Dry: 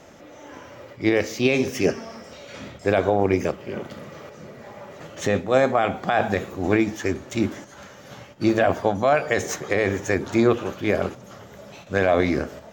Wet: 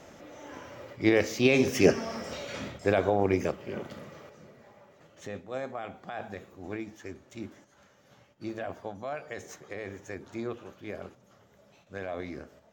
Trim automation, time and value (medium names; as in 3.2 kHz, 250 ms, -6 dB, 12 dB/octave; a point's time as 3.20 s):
1.44 s -3 dB
2.34 s +4 dB
2.97 s -5.5 dB
3.97 s -5.5 dB
4.96 s -17.5 dB